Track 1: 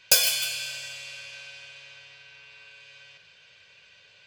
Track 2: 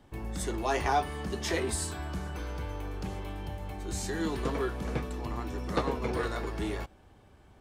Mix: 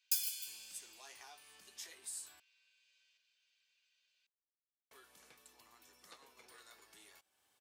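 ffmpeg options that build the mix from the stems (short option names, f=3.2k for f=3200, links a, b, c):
-filter_complex "[0:a]volume=-16dB[a];[1:a]acompressor=threshold=-48dB:ratio=2,adelay=350,volume=0dB,asplit=3[b][c][d];[b]atrim=end=2.4,asetpts=PTS-STARTPTS,afade=t=out:st=2.396:d=0.004:c=hsin[e];[c]atrim=start=2.4:end=4.91,asetpts=PTS-STARTPTS,volume=0[f];[d]atrim=start=4.91,asetpts=PTS-STARTPTS,afade=t=in:d=0.004:c=hsin[g];[e][f][g]concat=n=3:v=0:a=1[h];[a][h]amix=inputs=2:normalize=0,aderivative"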